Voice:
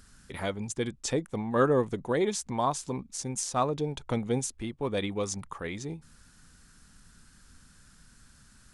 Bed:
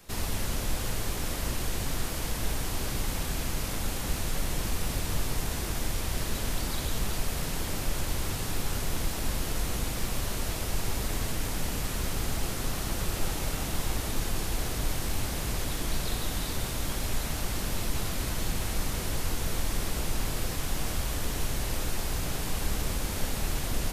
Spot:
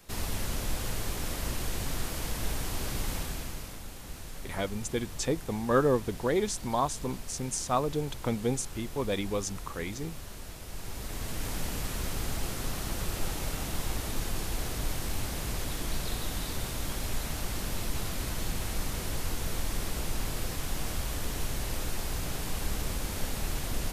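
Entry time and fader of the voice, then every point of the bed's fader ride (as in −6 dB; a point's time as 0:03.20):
4.15 s, −0.5 dB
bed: 0:03.15 −2 dB
0:03.85 −12 dB
0:10.62 −12 dB
0:11.49 −2.5 dB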